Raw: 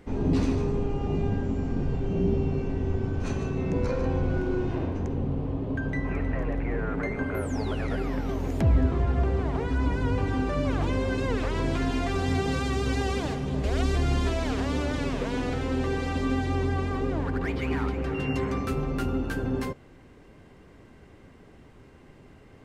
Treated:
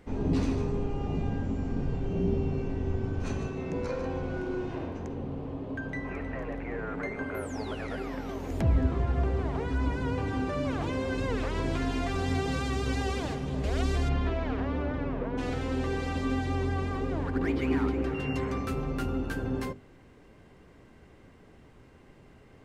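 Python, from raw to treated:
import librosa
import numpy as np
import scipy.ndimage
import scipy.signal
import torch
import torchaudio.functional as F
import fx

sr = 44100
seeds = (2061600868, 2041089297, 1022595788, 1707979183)

y = fx.low_shelf(x, sr, hz=170.0, db=-8.5, at=(3.47, 8.5))
y = fx.lowpass(y, sr, hz=fx.line((14.08, 2900.0), (15.37, 1300.0)), slope=12, at=(14.08, 15.37), fade=0.02)
y = fx.peak_eq(y, sr, hz=310.0, db=8.5, octaves=0.77, at=(17.35, 18.09))
y = fx.hum_notches(y, sr, base_hz=50, count=8)
y = F.gain(torch.from_numpy(y), -2.5).numpy()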